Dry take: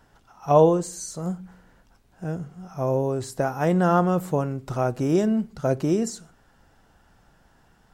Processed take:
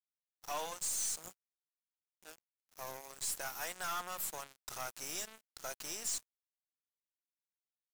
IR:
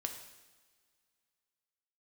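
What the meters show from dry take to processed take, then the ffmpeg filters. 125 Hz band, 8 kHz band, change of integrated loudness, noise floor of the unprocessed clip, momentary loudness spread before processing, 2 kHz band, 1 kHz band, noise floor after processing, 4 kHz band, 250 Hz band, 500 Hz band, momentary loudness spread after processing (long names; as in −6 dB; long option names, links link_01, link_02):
−36.5 dB, +0.5 dB, −16.0 dB, −60 dBFS, 15 LU, −8.5 dB, −17.0 dB, below −85 dBFS, −0.5 dB, −35.5 dB, −27.0 dB, 18 LU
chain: -filter_complex "[0:a]aderivative,acrossover=split=770[link_01][link_02];[link_01]acompressor=threshold=-56dB:ratio=12[link_03];[link_03][link_02]amix=inputs=2:normalize=0,aeval=exprs='(tanh(200*val(0)+0.15)-tanh(0.15))/200':channel_layout=same,acrusher=bits=7:mix=0:aa=0.5,volume=9.5dB"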